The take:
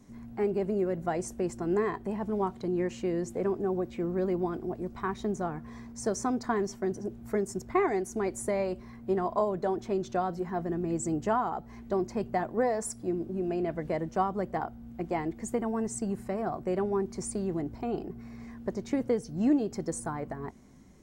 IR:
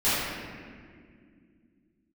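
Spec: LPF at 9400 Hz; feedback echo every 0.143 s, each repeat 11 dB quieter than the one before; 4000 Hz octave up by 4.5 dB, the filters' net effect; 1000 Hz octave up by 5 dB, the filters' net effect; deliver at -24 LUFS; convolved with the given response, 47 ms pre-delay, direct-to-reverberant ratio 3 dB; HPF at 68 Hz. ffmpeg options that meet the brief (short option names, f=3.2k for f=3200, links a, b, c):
-filter_complex "[0:a]highpass=68,lowpass=9.4k,equalizer=f=1k:t=o:g=6.5,equalizer=f=4k:t=o:g=6,aecho=1:1:143|286|429:0.282|0.0789|0.0221,asplit=2[a][b];[1:a]atrim=start_sample=2205,adelay=47[c];[b][c]afir=irnorm=-1:irlink=0,volume=-18.5dB[d];[a][d]amix=inputs=2:normalize=0,volume=3.5dB"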